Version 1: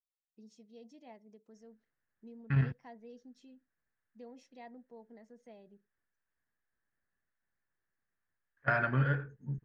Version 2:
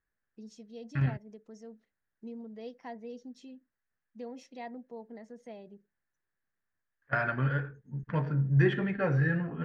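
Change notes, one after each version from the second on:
first voice +8.5 dB
second voice: entry −1.55 s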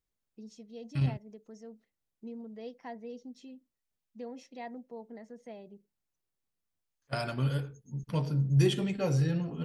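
second voice: remove low-pass with resonance 1,700 Hz, resonance Q 6.5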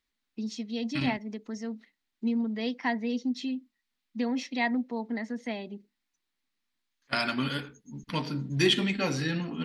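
first voice +8.0 dB
master: add octave-band graphic EQ 125/250/500/1,000/2,000/4,000 Hz −12/+12/−5/+5/+10/+11 dB

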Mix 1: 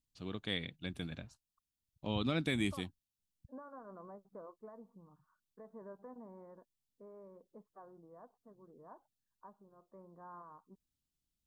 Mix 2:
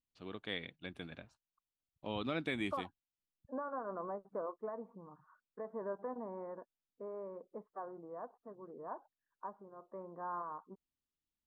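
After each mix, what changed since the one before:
second voice +11.0 dB
master: add bass and treble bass −10 dB, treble −13 dB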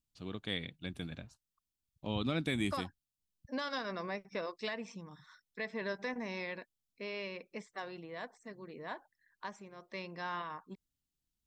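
second voice: remove Butterworth low-pass 1,300 Hz 48 dB per octave
master: add bass and treble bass +10 dB, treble +13 dB

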